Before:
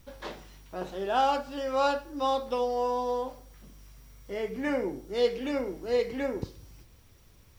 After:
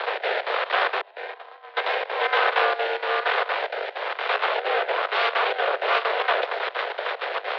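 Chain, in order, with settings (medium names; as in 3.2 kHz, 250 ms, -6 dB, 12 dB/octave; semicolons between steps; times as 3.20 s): spectral levelling over time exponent 0.2; 1.01–1.77 s: expander -10 dBFS; square tremolo 4.3 Hz, depth 60%, duty 75%; Chebyshev shaper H 3 -18 dB, 5 -26 dB, 7 -31 dB, 8 -6 dB, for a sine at -5 dBFS; rotary cabinet horn 1.1 Hz, later 7 Hz, at 5.75 s; mistuned SSB +210 Hz 220–3600 Hz; trim -3.5 dB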